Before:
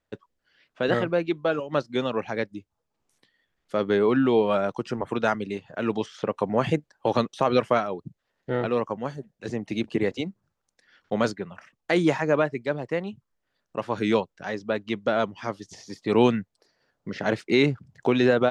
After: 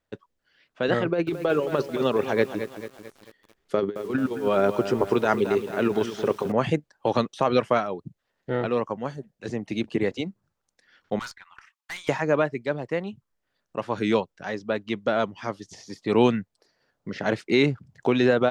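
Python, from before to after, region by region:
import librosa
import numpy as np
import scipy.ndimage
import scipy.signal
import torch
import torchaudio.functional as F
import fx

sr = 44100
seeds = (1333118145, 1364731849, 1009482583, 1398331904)

y = fx.chain(x, sr, fx.peak_eq(hz=400.0, db=10.0, octaves=0.28),
    fx.over_compress(threshold_db=-22.0, ratio=-0.5),
    fx.echo_crushed(ms=220, feedback_pct=55, bits=7, wet_db=-10), at=(1.05, 6.52))
y = fx.chain(y, sr, fx.steep_highpass(hz=900.0, slope=48),
    fx.tube_stage(drive_db=31.0, bias=0.4), at=(11.19, 12.09))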